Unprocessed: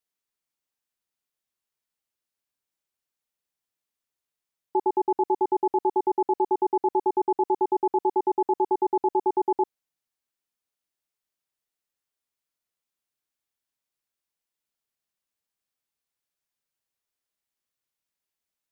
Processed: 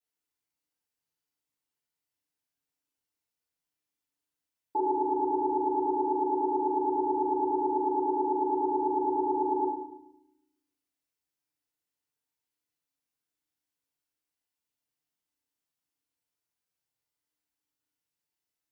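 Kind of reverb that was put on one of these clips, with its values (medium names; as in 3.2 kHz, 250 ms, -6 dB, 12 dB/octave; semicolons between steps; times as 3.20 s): FDN reverb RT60 0.79 s, low-frequency decay 1.55×, high-frequency decay 0.9×, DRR -7 dB; trim -9.5 dB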